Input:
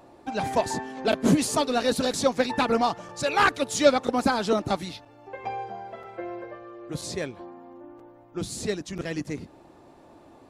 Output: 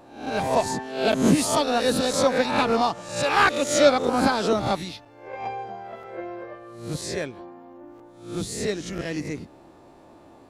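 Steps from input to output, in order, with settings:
peak hold with a rise ahead of every peak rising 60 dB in 0.54 s

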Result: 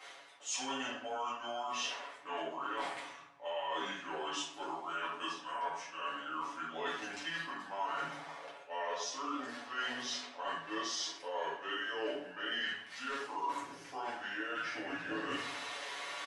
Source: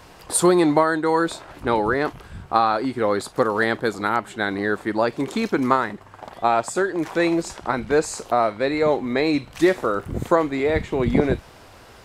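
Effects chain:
Bessel high-pass filter 2,100 Hz, order 2
high-shelf EQ 6,200 Hz −8 dB
comb filter 5.3 ms
reversed playback
downward compressor 8 to 1, threshold −48 dBFS, peak gain reduction 26 dB
reversed playback
wrong playback speed 45 rpm record played at 33 rpm
convolution reverb RT60 0.65 s, pre-delay 4 ms, DRR −7.5 dB
one half of a high-frequency compander decoder only
level +3.5 dB

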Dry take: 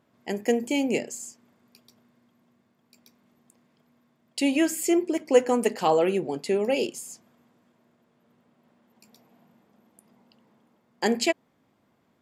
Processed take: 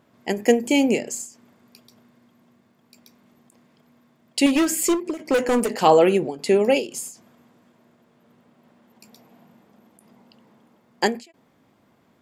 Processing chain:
0:04.46–0:05.79: gain into a clipping stage and back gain 22 dB
every ending faded ahead of time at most 160 dB per second
level +7 dB

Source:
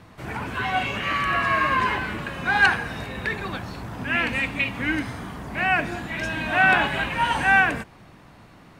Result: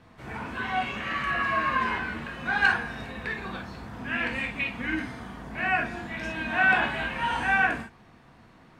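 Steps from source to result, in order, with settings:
high-shelf EQ 9,200 Hz −10 dB
reverb whose tail is shaped and stops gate 80 ms flat, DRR 0.5 dB
level −7.5 dB

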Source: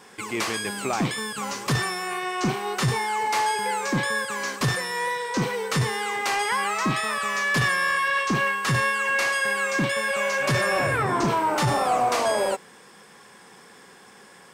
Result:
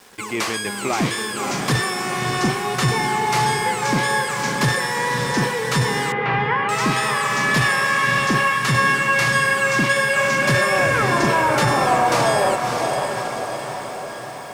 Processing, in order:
feedback delay with all-pass diffusion 609 ms, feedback 58%, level −4.5 dB
centre clipping without the shift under −46.5 dBFS
0:06.12–0:06.69: low-pass filter 2,700 Hz 24 dB per octave
level +3.5 dB

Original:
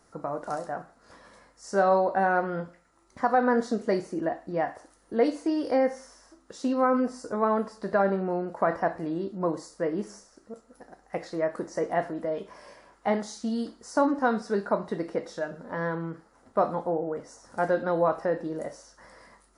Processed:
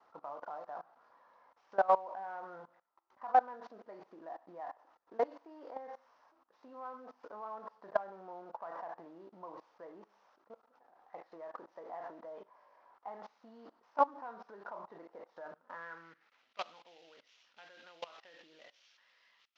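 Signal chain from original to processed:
variable-slope delta modulation 32 kbit/s
output level in coarse steps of 21 dB
band-pass filter sweep 930 Hz → 2,900 Hz, 0:15.45–0:16.52
level +4 dB

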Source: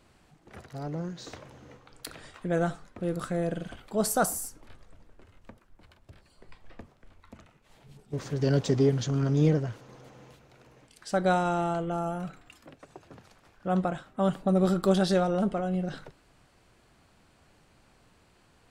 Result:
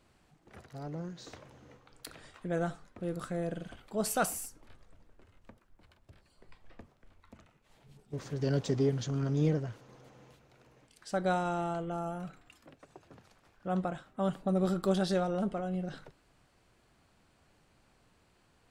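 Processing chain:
0:04.06–0:04.46: parametric band 2,600 Hz +14.5 dB 0.78 octaves
level −5.5 dB

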